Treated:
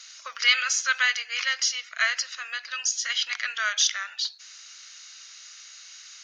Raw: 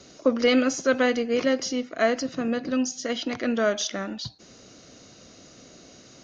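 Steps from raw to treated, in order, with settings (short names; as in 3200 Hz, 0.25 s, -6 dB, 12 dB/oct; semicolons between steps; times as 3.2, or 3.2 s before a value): HPF 1500 Hz 24 dB/oct; gain +7.5 dB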